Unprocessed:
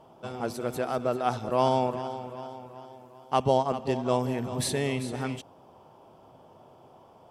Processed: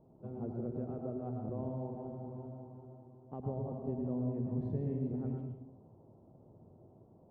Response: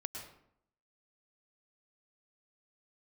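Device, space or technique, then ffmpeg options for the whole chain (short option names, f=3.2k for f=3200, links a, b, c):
television next door: -filter_complex "[0:a]acompressor=threshold=-30dB:ratio=3,lowpass=320[a];[1:a]atrim=start_sample=2205[b];[a][b]afir=irnorm=-1:irlink=0,volume=1dB"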